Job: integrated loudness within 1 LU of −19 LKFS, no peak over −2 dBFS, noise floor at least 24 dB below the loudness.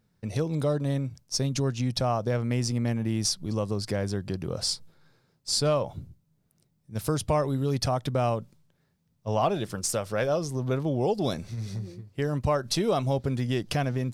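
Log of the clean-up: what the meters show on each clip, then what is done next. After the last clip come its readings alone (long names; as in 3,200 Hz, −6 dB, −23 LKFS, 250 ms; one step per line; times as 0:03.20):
integrated loudness −28.5 LKFS; sample peak −13.5 dBFS; target loudness −19.0 LKFS
→ level +9.5 dB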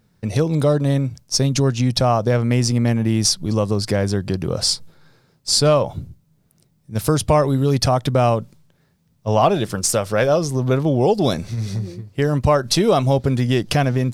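integrated loudness −19.0 LKFS; sample peak −4.0 dBFS; background noise floor −61 dBFS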